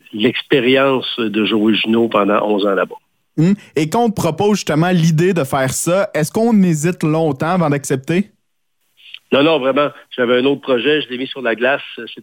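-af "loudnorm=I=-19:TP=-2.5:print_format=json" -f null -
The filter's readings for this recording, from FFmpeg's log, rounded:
"input_i" : "-15.6",
"input_tp" : "-1.3",
"input_lra" : "1.9",
"input_thresh" : "-25.9",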